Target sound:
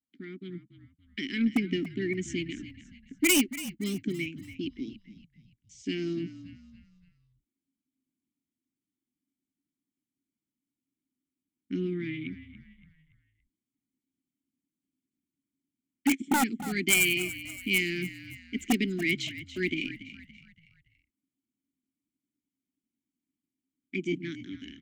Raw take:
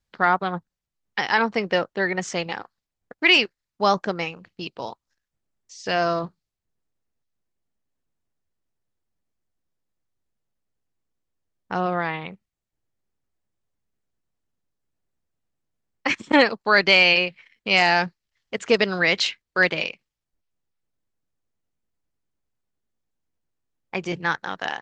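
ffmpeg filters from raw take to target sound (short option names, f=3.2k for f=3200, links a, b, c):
-filter_complex "[0:a]firequalizer=gain_entry='entry(370,0);entry(530,-29);entry(2100,-10);entry(7800,-5)':delay=0.05:min_phase=1,dynaudnorm=f=100:g=13:m=10dB,asplit=3[a][b][c];[a]bandpass=f=270:t=q:w=8,volume=0dB[d];[b]bandpass=f=2.29k:t=q:w=8,volume=-6dB[e];[c]bandpass=f=3.01k:t=q:w=8,volume=-9dB[f];[d][e][f]amix=inputs=3:normalize=0,asoftclip=type=tanh:threshold=-16.5dB,aeval=exprs='0.15*(cos(1*acos(clip(val(0)/0.15,-1,1)))-cos(1*PI/2))+0.00376*(cos(2*acos(clip(val(0)/0.15,-1,1)))-cos(2*PI/2))+0.015*(cos(3*acos(clip(val(0)/0.15,-1,1)))-cos(3*PI/2))':c=same,acontrast=90,aeval=exprs='0.168*(abs(mod(val(0)/0.168+3,4)-2)-1)':c=same,aexciter=amount=8.5:drive=4.1:freq=6.6k,asplit=2[g][h];[h]asplit=4[i][j][k][l];[i]adelay=284,afreqshift=-52,volume=-14dB[m];[j]adelay=568,afreqshift=-104,volume=-21.7dB[n];[k]adelay=852,afreqshift=-156,volume=-29.5dB[o];[l]adelay=1136,afreqshift=-208,volume=-37.2dB[p];[m][n][o][p]amix=inputs=4:normalize=0[q];[g][q]amix=inputs=2:normalize=0,adynamicequalizer=threshold=0.0158:dfrequency=2100:dqfactor=0.7:tfrequency=2100:tqfactor=0.7:attack=5:release=100:ratio=0.375:range=2:mode=cutabove:tftype=highshelf,volume=-1.5dB"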